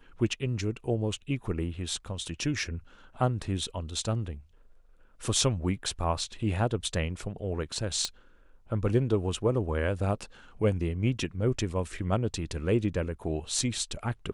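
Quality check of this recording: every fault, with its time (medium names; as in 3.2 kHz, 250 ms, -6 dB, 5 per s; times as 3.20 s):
8.05 s: pop -15 dBFS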